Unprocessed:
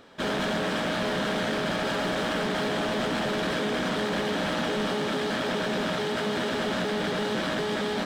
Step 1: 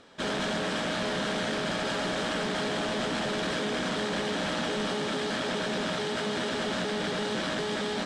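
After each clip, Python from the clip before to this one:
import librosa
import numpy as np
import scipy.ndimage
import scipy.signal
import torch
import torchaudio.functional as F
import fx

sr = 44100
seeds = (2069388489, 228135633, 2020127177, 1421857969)

y = scipy.signal.sosfilt(scipy.signal.butter(4, 9300.0, 'lowpass', fs=sr, output='sos'), x)
y = fx.high_shelf(y, sr, hz=4600.0, db=7.0)
y = y * 10.0 ** (-3.0 / 20.0)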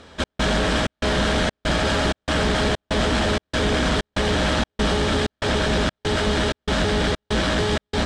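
y = fx.octave_divider(x, sr, octaves=2, level_db=2.0)
y = fx.step_gate(y, sr, bpm=191, pattern='xxx..xxx', floor_db=-60.0, edge_ms=4.5)
y = y * 10.0 ** (8.5 / 20.0)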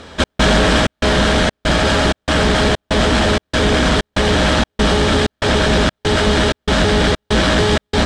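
y = fx.rider(x, sr, range_db=4, speed_s=2.0)
y = y * 10.0 ** (6.5 / 20.0)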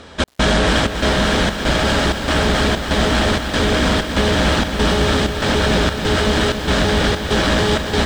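y = fx.echo_crushed(x, sr, ms=277, feedback_pct=80, bits=6, wet_db=-9.0)
y = y * 10.0 ** (-2.5 / 20.0)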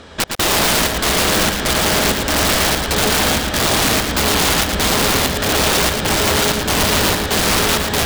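y = (np.mod(10.0 ** (11.0 / 20.0) * x + 1.0, 2.0) - 1.0) / 10.0 ** (11.0 / 20.0)
y = y + 10.0 ** (-5.5 / 20.0) * np.pad(y, (int(112 * sr / 1000.0), 0))[:len(y)]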